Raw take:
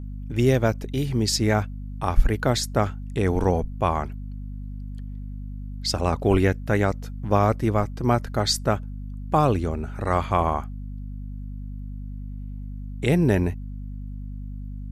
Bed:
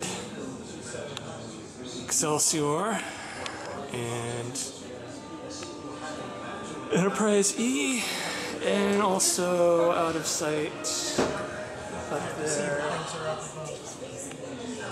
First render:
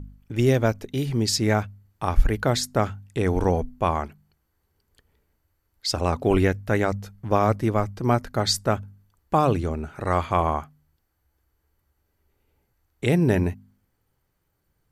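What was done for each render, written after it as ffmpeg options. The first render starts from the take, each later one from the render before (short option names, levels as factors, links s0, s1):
-af "bandreject=f=50:t=h:w=4,bandreject=f=100:t=h:w=4,bandreject=f=150:t=h:w=4,bandreject=f=200:t=h:w=4,bandreject=f=250:t=h:w=4"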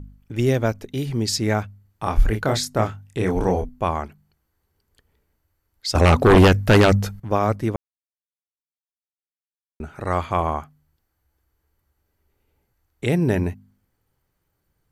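-filter_complex "[0:a]asettb=1/sr,asplit=3[s0][s1][s2];[s0]atrim=end=2.034[s3];[s1]atrim=start=2.03:end=3.69,asetpts=PTS-STARTPTS,afade=t=in:d=0.004:c=qsin,afade=t=out:st=1.656:d=0.004:c=qsin,asplit=2[s4][s5];[s5]adelay=27,volume=0.596[s6];[s4][s6]amix=inputs=2:normalize=0,atrim=end_sample=73206[s7];[s2]atrim=start=3.686[s8];[s3][s7]acrossfade=d=0.004:c1=hsin:c2=qsin[s9];[s9][s8]acrossfade=d=0.004:c1=qsin:c2=hsin,asettb=1/sr,asplit=3[s10][s11][s12];[s10]atrim=end=5.954[s13];[s11]atrim=start=5.95:end=7.2,asetpts=PTS-STARTPTS,afade=t=in:d=0.004:c=qsin,afade=t=out:st=1.246:d=0.004:c=qsin,aeval=exprs='0.422*sin(PI/2*2.82*val(0)/0.422)':c=same[s14];[s12]atrim=start=7.196[s15];[s13][s14]acrossfade=d=0.004:c1=hsin:c2=qsin[s16];[s16][s15]acrossfade=d=0.004:c1=qsin:c2=hsin,asplit=3[s17][s18][s19];[s17]atrim=end=7.76,asetpts=PTS-STARTPTS,afade=t=out:st=7.756:d=0.004:c=hsin[s20];[s18]atrim=start=7.76:end=9.8,asetpts=PTS-STARTPTS,volume=0[s21];[s19]atrim=start=9.8,asetpts=PTS-STARTPTS,afade=t=in:d=0.004:c=hsin[s22];[s20][s21][s22]concat=n=3:v=0:a=1"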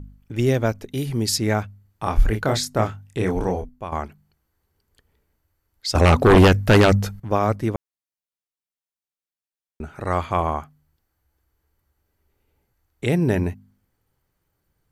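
-filter_complex "[0:a]asettb=1/sr,asplit=3[s0][s1][s2];[s0]atrim=end=0.914[s3];[s1]atrim=start=0.91:end=1.38,asetpts=PTS-STARTPTS,afade=t=in:d=0.004:c=qsin,afade=t=out:st=0.466:d=0.004:c=qsin,equalizer=f=11000:t=o:w=0.45:g=10.5[s4];[s2]atrim=start=1.376[s5];[s3][s4]acrossfade=d=0.004:c1=hsin:c2=qsin[s6];[s6][s5]acrossfade=d=0.004:c1=qsin:c2=hsin,asplit=2[s7][s8];[s7]atrim=end=3.92,asetpts=PTS-STARTPTS,afade=t=out:st=3.21:d=0.71:silence=0.251189[s9];[s8]atrim=start=3.92,asetpts=PTS-STARTPTS,afade=t=in:d=0.004:c=hsin:silence=0.251189[s10];[s9][s10]concat=n=2:v=0:a=1"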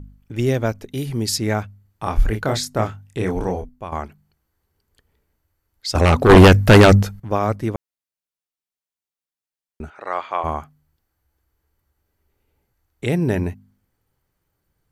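-filter_complex "[0:a]asettb=1/sr,asplit=3[s0][s1][s2];[s0]atrim=end=6.294[s3];[s1]atrim=start=6.29:end=7.03,asetpts=PTS-STARTPTS,afade=t=in:d=0.004:c=qsin,afade=t=out:st=0.736:d=0.004:c=qsin,acontrast=77[s4];[s2]atrim=start=7.026[s5];[s3][s4]acrossfade=d=0.004:c1=hsin:c2=qsin[s6];[s6][s5]acrossfade=d=0.004:c1=qsin:c2=hsin,asplit=3[s7][s8][s9];[s7]afade=t=out:st=9.89:d=0.02[s10];[s8]highpass=560,lowpass=4300,afade=t=in:st=9.89:d=0.02,afade=t=out:st=10.43:d=0.02[s11];[s9]afade=t=in:st=10.43:d=0.02[s12];[s10][s11][s12]amix=inputs=3:normalize=0"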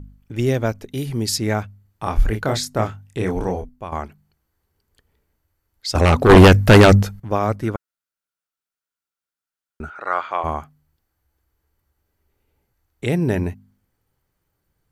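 -filter_complex "[0:a]asettb=1/sr,asplit=3[s0][s1][s2];[s0]atrim=end=7.614[s3];[s1]atrim=start=7.61:end=10.32,asetpts=PTS-STARTPTS,afade=t=in:d=0.004:c=qsin,afade=t=out:st=2.706:d=0.004:c=qsin,equalizer=f=1400:w=4.7:g=12.5[s4];[s2]atrim=start=10.316[s5];[s3][s4]acrossfade=d=0.004:c1=hsin:c2=qsin[s6];[s6][s5]acrossfade=d=0.004:c1=qsin:c2=hsin"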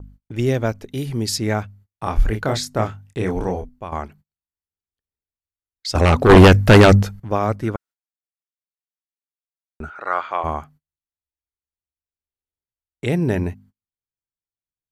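-af "agate=range=0.0282:threshold=0.00501:ratio=16:detection=peak,highshelf=f=10000:g=-5"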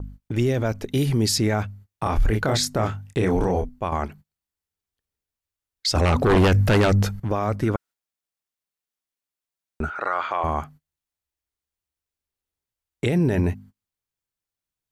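-filter_complex "[0:a]asplit=2[s0][s1];[s1]acompressor=threshold=0.1:ratio=6,volume=0.891[s2];[s0][s2]amix=inputs=2:normalize=0,alimiter=limit=0.224:level=0:latency=1:release=14"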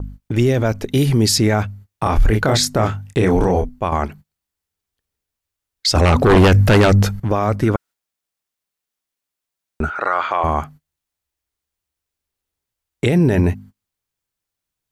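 -af "volume=2"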